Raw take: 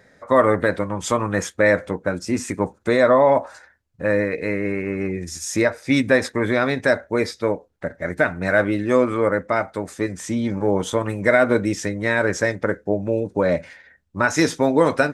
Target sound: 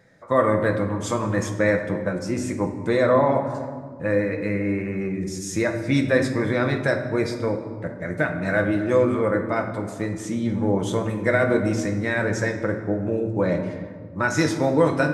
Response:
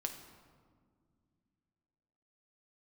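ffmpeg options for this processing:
-filter_complex "[0:a]equalizer=f=120:w=0.88:g=6.5[a];[1:a]atrim=start_sample=2205[b];[a][b]afir=irnorm=-1:irlink=0,volume=-3.5dB"

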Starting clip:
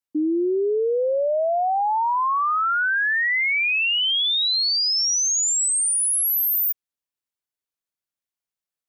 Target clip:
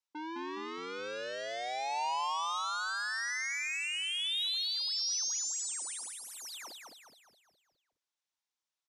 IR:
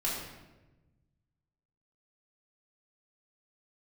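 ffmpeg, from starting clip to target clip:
-filter_complex "[0:a]asoftclip=type=tanh:threshold=-35.5dB,highpass=f=320:w=0.5412,highpass=f=320:w=1.3066,equalizer=f=430:t=q:w=4:g=-9,equalizer=f=630:t=q:w=4:g=-4,equalizer=f=940:t=q:w=4:g=5,equalizer=f=3.7k:t=q:w=4:g=4,equalizer=f=5.7k:t=q:w=4:g=4,lowpass=f=8.2k:w=0.5412,lowpass=f=8.2k:w=1.3066,asplit=2[a][b];[b]asplit=6[c][d][e][f][g][h];[c]adelay=208,afreqshift=-42,volume=-4dB[i];[d]adelay=416,afreqshift=-84,volume=-10.7dB[j];[e]adelay=624,afreqshift=-126,volume=-17.5dB[k];[f]adelay=832,afreqshift=-168,volume=-24.2dB[l];[g]adelay=1040,afreqshift=-210,volume=-31dB[m];[h]adelay=1248,afreqshift=-252,volume=-37.7dB[n];[i][j][k][l][m][n]amix=inputs=6:normalize=0[o];[a][o]amix=inputs=2:normalize=0,volume=-2dB"

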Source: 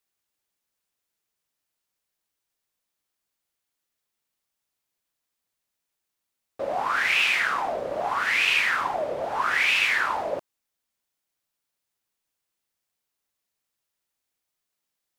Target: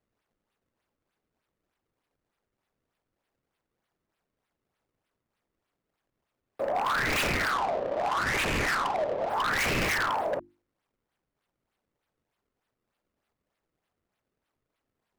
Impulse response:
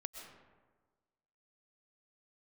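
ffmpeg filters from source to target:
-filter_complex "[0:a]acrossover=split=100|790|2200[a][b][c][d];[d]acrusher=samples=31:mix=1:aa=0.000001:lfo=1:lforange=49.6:lforate=3.3[e];[a][b][c][e]amix=inputs=4:normalize=0,bandreject=f=50:t=h:w=6,bandreject=f=100:t=h:w=6,bandreject=f=150:t=h:w=6,bandreject=f=200:t=h:w=6,bandreject=f=250:t=h:w=6,bandreject=f=300:t=h:w=6,bandreject=f=350:t=h:w=6,aeval=exprs='0.0841*(abs(mod(val(0)/0.0841+3,4)-2)-1)':c=same,asettb=1/sr,asplit=3[f][g][h];[f]atrim=end=7.514[i];[g]atrim=start=7.51:end=9.3,asetpts=PTS-STARTPTS,afade=t=in:d=0.004:c=qsin,afade=t=out:st=1.786:d=0.004:c=qsin,adynamicsmooth=sensitivity=6:basefreq=620[j];[h]atrim=start=9.296[k];[i][j]acrossfade=d=0.004:c1=hsin:c2=qsin[l];[l][k]acrossfade=d=0.004:c1=qsin:c2=hsin"

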